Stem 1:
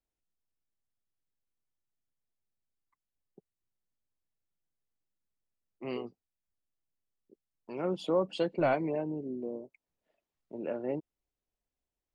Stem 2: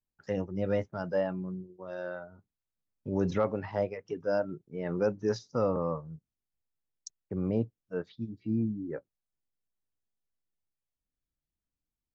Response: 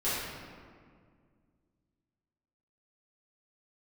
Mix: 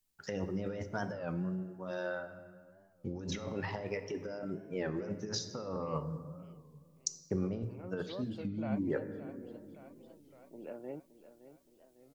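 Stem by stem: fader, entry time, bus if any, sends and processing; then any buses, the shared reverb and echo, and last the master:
−17.5 dB, 0.00 s, no send, echo send −14 dB, no processing
−4.0 dB, 0.00 s, send −17 dB, no echo send, high-shelf EQ 2,700 Hz +11 dB; mains-hum notches 60/120/180 Hz; compressor whose output falls as the input rises −35 dBFS, ratio −1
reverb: on, RT60 2.0 s, pre-delay 5 ms
echo: repeating echo 568 ms, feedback 55%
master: speech leveller 2 s; wow of a warped record 33 1/3 rpm, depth 160 cents

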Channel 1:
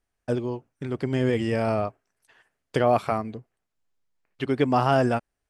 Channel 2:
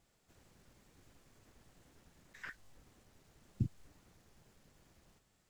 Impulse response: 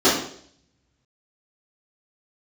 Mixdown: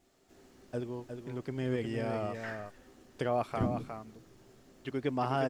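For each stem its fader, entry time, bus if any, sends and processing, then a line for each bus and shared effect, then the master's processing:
−10.5 dB, 0.45 s, no send, echo send −7 dB, no processing
+1.0 dB, 0.00 s, send −18.5 dB, no echo send, no processing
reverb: on, RT60 0.60 s, pre-delay 3 ms
echo: single-tap delay 359 ms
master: no processing

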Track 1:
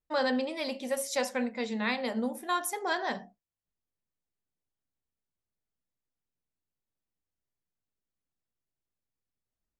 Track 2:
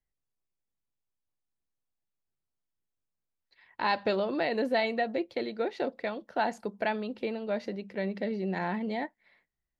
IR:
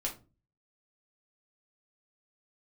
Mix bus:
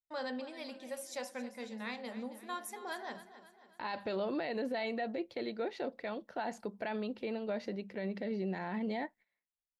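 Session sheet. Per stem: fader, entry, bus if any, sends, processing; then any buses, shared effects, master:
−11.0 dB, 0.00 s, no send, echo send −14 dB, noise gate with hold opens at −42 dBFS
−2.5 dB, 0.00 s, no send, no echo send, noise gate −55 dBFS, range −20 dB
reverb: not used
echo: repeating echo 270 ms, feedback 50%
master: brickwall limiter −28 dBFS, peak gain reduction 10.5 dB

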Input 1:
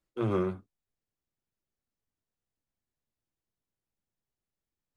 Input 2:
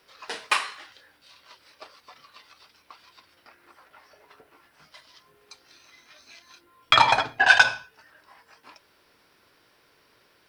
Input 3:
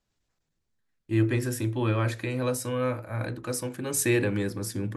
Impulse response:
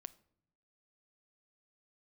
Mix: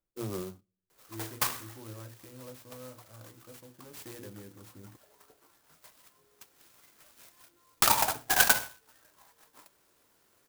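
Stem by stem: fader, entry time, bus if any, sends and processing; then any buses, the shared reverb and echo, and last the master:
−4.0 dB, 0.00 s, send −19.5 dB, automatic ducking −19 dB, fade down 1.35 s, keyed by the third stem
−7.0 dB, 0.90 s, no send, high-shelf EQ 8,500 Hz +11 dB
−19.0 dB, 0.00 s, no send, mains-hum notches 60/120/180/240/300/360 Hz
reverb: on, pre-delay 7 ms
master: converter with an unsteady clock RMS 0.11 ms

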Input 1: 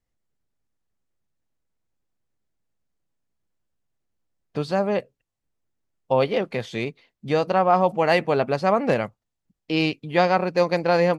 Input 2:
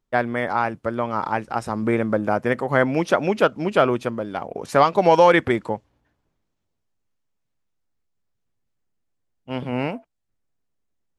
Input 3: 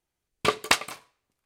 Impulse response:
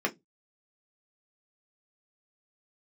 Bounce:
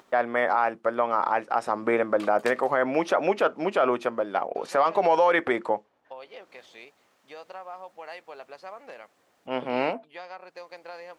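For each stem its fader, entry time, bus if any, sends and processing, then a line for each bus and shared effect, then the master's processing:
−14.0 dB, 0.00 s, no send, downward compressor, threshold −20 dBFS, peak gain reduction 7.5 dB
+2.5 dB, 0.00 s, send −22 dB, upward compression, threshold −32 dBFS; spectral tilt −3 dB per octave
−17.5 dB, 1.75 s, no send, no processing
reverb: on, RT60 0.15 s, pre-delay 3 ms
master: high-pass filter 620 Hz 12 dB per octave; brickwall limiter −11.5 dBFS, peak gain reduction 11 dB

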